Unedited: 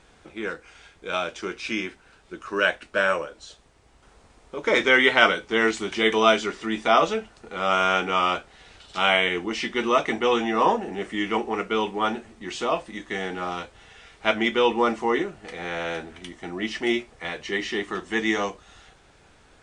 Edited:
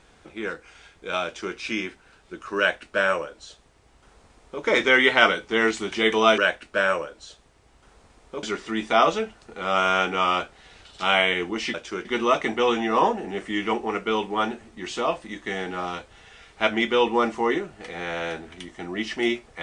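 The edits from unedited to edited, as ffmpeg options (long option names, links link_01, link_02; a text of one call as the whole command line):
ffmpeg -i in.wav -filter_complex "[0:a]asplit=5[link_01][link_02][link_03][link_04][link_05];[link_01]atrim=end=6.382[link_06];[link_02]atrim=start=2.578:end=4.632[link_07];[link_03]atrim=start=6.378:end=9.692[link_08];[link_04]atrim=start=1.248:end=1.562[link_09];[link_05]atrim=start=9.688[link_10];[link_06][link_07]acrossfade=duration=0.004:curve1=hsin:curve2=hsin[link_11];[link_11][link_08]acrossfade=duration=0.004:curve1=hsin:curve2=hsin[link_12];[link_12][link_09]acrossfade=duration=0.004:curve1=hsin:curve2=hsin[link_13];[link_13][link_10]acrossfade=duration=0.004:curve1=hsin:curve2=hsin" out.wav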